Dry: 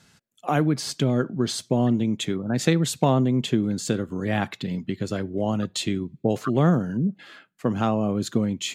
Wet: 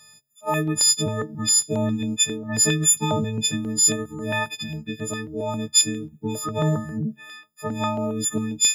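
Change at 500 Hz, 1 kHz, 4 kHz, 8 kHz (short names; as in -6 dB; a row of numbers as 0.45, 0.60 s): -2.5, -1.0, +8.0, +16.5 dB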